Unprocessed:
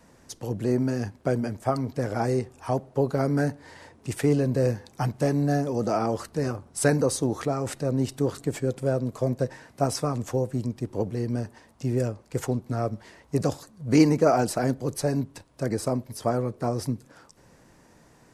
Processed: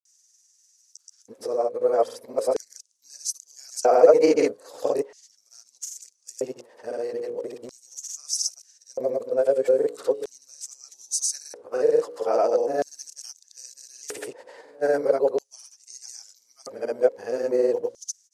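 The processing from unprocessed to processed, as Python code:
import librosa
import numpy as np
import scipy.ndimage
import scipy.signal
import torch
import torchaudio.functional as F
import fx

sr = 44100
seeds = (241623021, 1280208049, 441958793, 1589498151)

y = x[::-1].copy()
y = fx.hum_notches(y, sr, base_hz=60, count=9)
y = fx.granulator(y, sr, seeds[0], grain_ms=100.0, per_s=20.0, spray_ms=100.0, spread_st=0)
y = fx.filter_lfo_highpass(y, sr, shape='square', hz=0.39, low_hz=490.0, high_hz=6100.0, q=5.0)
y = y * librosa.db_to_amplitude(-1.0)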